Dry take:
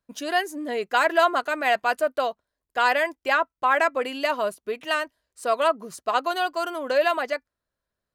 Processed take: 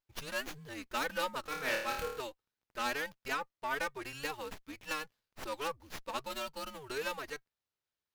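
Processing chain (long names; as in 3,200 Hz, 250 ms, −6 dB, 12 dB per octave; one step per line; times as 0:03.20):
frequency shifter −140 Hz
first-order pre-emphasis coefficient 0.9
0:01.41–0:02.21: flutter between parallel walls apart 4.6 metres, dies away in 0.59 s
windowed peak hold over 5 samples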